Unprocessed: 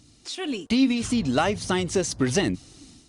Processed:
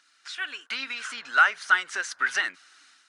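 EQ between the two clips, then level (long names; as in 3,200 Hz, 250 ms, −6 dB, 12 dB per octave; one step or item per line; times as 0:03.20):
high-pass with resonance 1,500 Hz, resonance Q 6.5
high-shelf EQ 4,400 Hz −11.5 dB
0.0 dB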